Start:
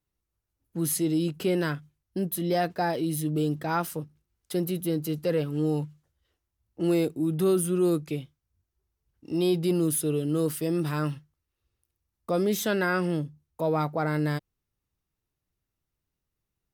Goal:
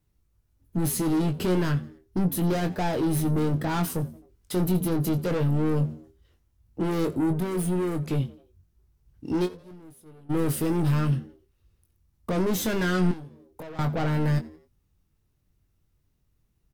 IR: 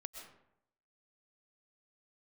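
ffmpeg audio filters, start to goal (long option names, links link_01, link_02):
-filter_complex "[0:a]asoftclip=type=tanh:threshold=-32.5dB,asettb=1/sr,asplit=3[link_01][link_02][link_03];[link_01]atrim=end=7.334[link_04];[link_02]atrim=start=7.33:end=8.12,asetpts=PTS-STARTPTS,afade=type=in:duration=0.004:curve=qsin,afade=type=out:start_time=0.786:duration=0.004:curve=qsin,acompressor=threshold=-37dB:ratio=6[link_05];[link_03]atrim=start=8.116[link_06];[link_04][link_05]acrossfade=duration=0.004:curve1=hsin:curve2=qsin[link_07];[link_07][link_06]acrossfade=duration=0.004:curve1=qsin:curve2=hsin,asplit=3[link_08][link_09][link_10];[link_08]afade=type=out:start_time=9.45:duration=0.02[link_11];[link_09]agate=range=-28dB:threshold=-32dB:ratio=16:detection=peak,afade=type=in:start_time=9.45:duration=0.02,afade=type=out:start_time=10.29:duration=0.02[link_12];[link_10]afade=type=in:start_time=10.29:duration=0.02[link_13];[link_11][link_12][link_13]amix=inputs=3:normalize=0,lowshelf=frequency=260:gain=10.5,asplit=4[link_14][link_15][link_16][link_17];[link_15]adelay=87,afreqshift=82,volume=-21dB[link_18];[link_16]adelay=174,afreqshift=164,volume=-28.3dB[link_19];[link_17]adelay=261,afreqshift=246,volume=-35.7dB[link_20];[link_14][link_18][link_19][link_20]amix=inputs=4:normalize=0,asettb=1/sr,asplit=3[link_21][link_22][link_23];[link_21]atrim=end=13.114[link_24];[link_22]atrim=start=13.11:end=13.79,asetpts=PTS-STARTPTS,afade=type=in:duration=0.004:curve=qsin,afade=type=out:start_time=0.676:duration=0.004:curve=qsin,acrossover=split=300|1100[link_25][link_26][link_27];[link_25]acompressor=threshold=-52dB:ratio=4[link_28];[link_26]acompressor=threshold=-50dB:ratio=4[link_29];[link_27]acompressor=threshold=-58dB:ratio=4[link_30];[link_28][link_29][link_30]amix=inputs=3:normalize=0[link_31];[link_23]atrim=start=13.786[link_32];[link_24][link_31]acrossfade=duration=0.004:curve1=hsin:curve2=qsin[link_33];[link_33][link_32]acrossfade=duration=0.004:curve1=qsin:curve2=hsin,asplit=2[link_34][link_35];[link_35]adelay=22,volume=-7.5dB[link_36];[link_34][link_36]amix=inputs=2:normalize=0,volume=5dB"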